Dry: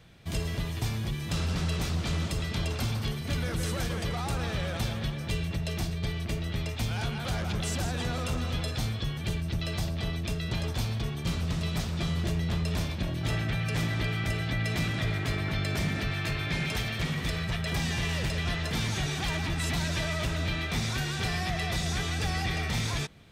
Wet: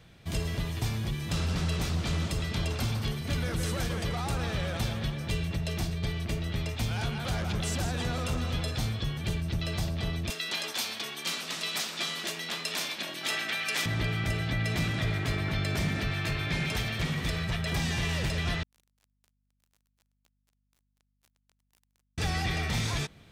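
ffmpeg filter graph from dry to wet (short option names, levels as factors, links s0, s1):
-filter_complex "[0:a]asettb=1/sr,asplit=3[s0][s1][s2];[s0]atrim=end=10.304[s3];[s1]atrim=start=10.3:end=13.86,asetpts=PTS-STARTPTS,afade=t=in:d=0.004:c=qsin,afade=t=out:st=3.556:d=0.004:c=qsin,highpass=f=220:w=0.5412,highpass=f=220:w=1.3066,tiltshelf=f=840:g=-8[s4];[s2]atrim=start=13.856[s5];[s3][s4]acrossfade=d=0.004:c1=hsin:c2=qsin[s6];[s6][s5]acrossfade=d=0.004:c1=qsin:c2=hsin,asettb=1/sr,asplit=3[s7][s8][s9];[s7]atrim=end=18.634[s10];[s8]atrim=start=18.63:end=22.18,asetpts=PTS-STARTPTS,afade=t=in:d=0.004:c=qsin,afade=t=out:st=3.546:d=0.004:c=qsin,acrusher=bits=2:mix=0:aa=0.5,aeval=exprs='val(0)+0.000158*(sin(2*PI*50*n/s)+sin(2*PI*2*50*n/s)/2+sin(2*PI*3*50*n/s)/3+sin(2*PI*4*50*n/s)/4+sin(2*PI*5*50*n/s)/5)':c=same[s11];[s9]atrim=start=22.176[s12];[s10][s11]acrossfade=d=0.004:c1=hsin:c2=qsin[s13];[s13][s12]acrossfade=d=0.004:c1=qsin:c2=hsin"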